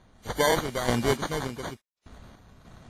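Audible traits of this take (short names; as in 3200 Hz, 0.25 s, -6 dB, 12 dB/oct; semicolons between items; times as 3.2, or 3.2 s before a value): random-step tremolo 3.4 Hz, depth 100%; aliases and images of a low sample rate 2600 Hz, jitter 0%; WMA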